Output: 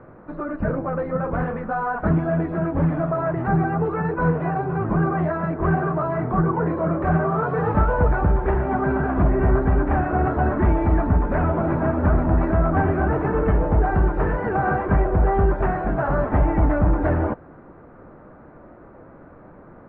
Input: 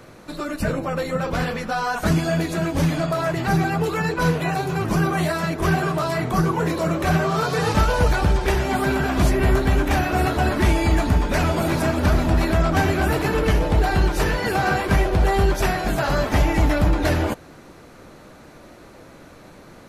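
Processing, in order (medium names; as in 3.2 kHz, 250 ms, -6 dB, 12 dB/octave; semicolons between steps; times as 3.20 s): low-pass 1.5 kHz 24 dB/octave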